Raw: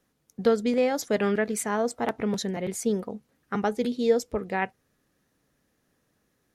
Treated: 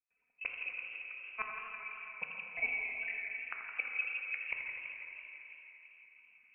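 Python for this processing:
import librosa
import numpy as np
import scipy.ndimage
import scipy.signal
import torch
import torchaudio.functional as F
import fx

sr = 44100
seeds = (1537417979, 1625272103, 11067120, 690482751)

y = fx.dereverb_blind(x, sr, rt60_s=1.7)
y = scipy.signal.sosfilt(scipy.signal.butter(2, 190.0, 'highpass', fs=sr, output='sos'), y)
y = y + 0.85 * np.pad(y, (int(3.9 * sr / 1000.0), 0))[:len(y)]
y = fx.level_steps(y, sr, step_db=10)
y = fx.gate_flip(y, sr, shuts_db=-22.0, range_db=-34)
y = fx.step_gate(y, sr, bpm=146, pattern='.xx.xxx.', floor_db=-24.0, edge_ms=4.5)
y = fx.echo_filtered(y, sr, ms=166, feedback_pct=81, hz=1500.0, wet_db=-9.0)
y = fx.rev_plate(y, sr, seeds[0], rt60_s=3.5, hf_ratio=0.95, predelay_ms=0, drr_db=0.5)
y = fx.freq_invert(y, sr, carrier_hz=2800)
y = fx.echo_warbled(y, sr, ms=82, feedback_pct=76, rate_hz=2.8, cents=85, wet_db=-11.0)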